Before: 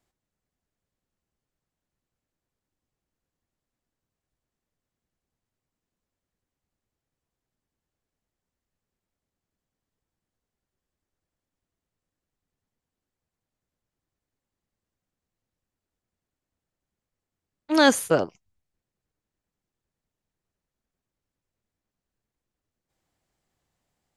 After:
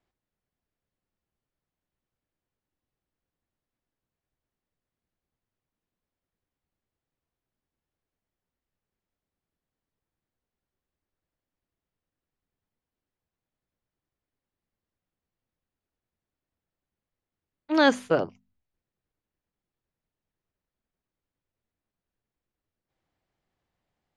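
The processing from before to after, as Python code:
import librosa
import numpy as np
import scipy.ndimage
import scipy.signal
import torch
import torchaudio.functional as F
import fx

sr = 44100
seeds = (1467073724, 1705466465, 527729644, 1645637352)

y = scipy.signal.sosfilt(scipy.signal.butter(2, 3900.0, 'lowpass', fs=sr, output='sos'), x)
y = fx.hum_notches(y, sr, base_hz=50, count=5)
y = y * librosa.db_to_amplitude(-2.0)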